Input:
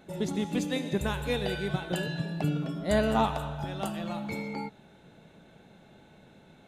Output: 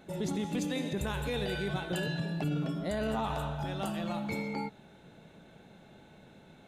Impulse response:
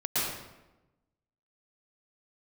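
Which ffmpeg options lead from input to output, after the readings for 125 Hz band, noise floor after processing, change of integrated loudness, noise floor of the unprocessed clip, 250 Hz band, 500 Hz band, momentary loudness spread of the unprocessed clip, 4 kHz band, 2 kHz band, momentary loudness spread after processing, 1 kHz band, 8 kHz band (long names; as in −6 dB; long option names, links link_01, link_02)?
−2.0 dB, −57 dBFS, −3.5 dB, −57 dBFS, −3.0 dB, −4.5 dB, 8 LU, −2.5 dB, −2.5 dB, 3 LU, −4.5 dB, −2.0 dB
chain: -af "alimiter=level_in=0.5dB:limit=-24dB:level=0:latency=1:release=12,volume=-0.5dB"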